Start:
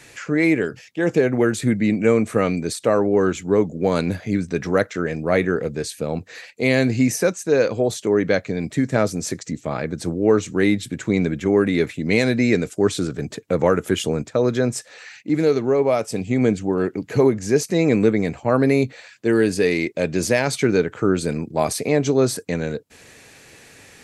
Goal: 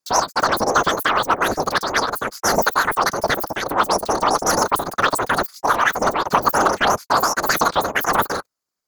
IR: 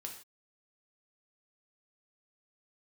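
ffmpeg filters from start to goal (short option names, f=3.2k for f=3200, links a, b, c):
-af "agate=range=-40dB:threshold=-40dB:ratio=16:detection=peak,highshelf=f=2.2k:g=4.5,acontrast=28,afftfilt=real='hypot(re,im)*cos(2*PI*random(0))':imag='hypot(re,im)*sin(2*PI*random(1))':win_size=512:overlap=0.75,asetrate=119511,aresample=44100,volume=2dB"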